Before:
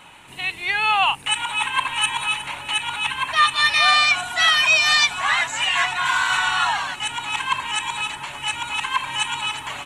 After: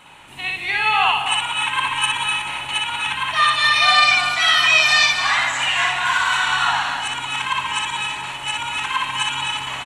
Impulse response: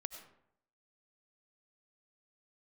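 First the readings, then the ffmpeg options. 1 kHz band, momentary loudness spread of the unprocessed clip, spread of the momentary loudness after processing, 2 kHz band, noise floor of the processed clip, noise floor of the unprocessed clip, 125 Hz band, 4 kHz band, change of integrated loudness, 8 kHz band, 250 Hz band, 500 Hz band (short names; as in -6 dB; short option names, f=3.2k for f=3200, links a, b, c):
+2.0 dB, 11 LU, 11 LU, +2.0 dB, -32 dBFS, -40 dBFS, +4.0 dB, +2.0 dB, +2.0 dB, +0.5 dB, +2.5 dB, +2.5 dB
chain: -filter_complex "[0:a]aecho=1:1:250:0.335,asplit=2[a][b];[1:a]atrim=start_sample=2205,lowpass=7k,adelay=60[c];[b][c]afir=irnorm=-1:irlink=0,volume=2.5dB[d];[a][d]amix=inputs=2:normalize=0,volume=-1.5dB"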